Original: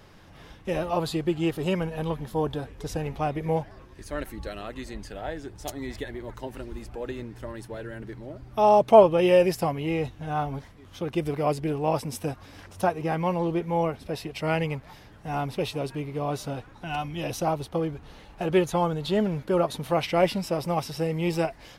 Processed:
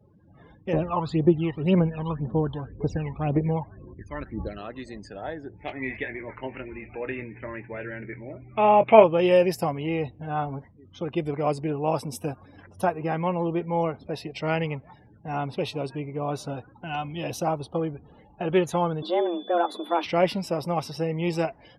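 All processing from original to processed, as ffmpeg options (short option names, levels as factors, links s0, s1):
-filter_complex "[0:a]asettb=1/sr,asplit=3[s0][s1][s2];[s0]atrim=end=0.734[s3];[s1]atrim=start=0.73:end=4.58,asetpts=PTS-STARTPTS,afade=t=in:d=0.004:c=qsin,afade=t=out:st=3.846:d=0.004:c=qsin,lowpass=f=1800:p=1,aphaser=in_gain=1:out_gain=1:delay=1.1:decay=0.7:speed=1.9:type=triangular[s4];[s2]atrim=start=4.576[s5];[s3][s4]acrossfade=d=0.004:c1=hsin:c2=qsin[s6];[s6][s5]acrossfade=d=0.004:c1=qsin:c2=hsin,asettb=1/sr,asplit=3[s7][s8][s9];[s7]atrim=end=5.564[s10];[s8]atrim=start=5.56:end=9.04,asetpts=PTS-STARTPTS,afade=t=in:d=0.004:c=qsin,afade=t=out:st=3.476:d=0.004:c=qsin,lowpass=f=2300:t=q:w=5.4,asplit=2[s11][s12];[s12]adelay=23,volume=0.316[s13];[s11][s13]amix=inputs=2:normalize=0,atrim=end_sample=153468[s14];[s9]atrim=start=9.036[s15];[s10][s14]acrossfade=d=0.004:c1=hsin:c2=qsin[s16];[s16][s15]acrossfade=d=0.004:c1=qsin:c2=hsin,asettb=1/sr,asplit=3[s17][s18][s19];[s17]atrim=end=19.024[s20];[s18]atrim=start=19.02:end=20.06,asetpts=PTS-STARTPTS,afade=t=in:d=0.004:c=qsin,afade=t=out:st=1.036:d=0.004:c=qsin,equalizer=f=5500:w=0.44:g=-5.5,aeval=exprs='val(0)+0.00562*sin(2*PI*3300*n/s)':c=same,afreqshift=170[s21];[s19]atrim=start=20.056[s22];[s20][s21]acrossfade=d=0.004:c1=hsin:c2=qsin[s23];[s23][s22]acrossfade=d=0.004:c1=qsin:c2=hsin,afftdn=nr=35:nf=-47,highpass=89"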